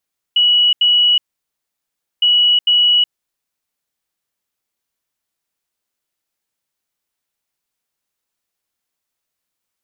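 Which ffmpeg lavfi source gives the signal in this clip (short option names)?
-f lavfi -i "aevalsrc='0.355*sin(2*PI*2930*t)*clip(min(mod(mod(t,1.86),0.45),0.37-mod(mod(t,1.86),0.45))/0.005,0,1)*lt(mod(t,1.86),0.9)':d=3.72:s=44100"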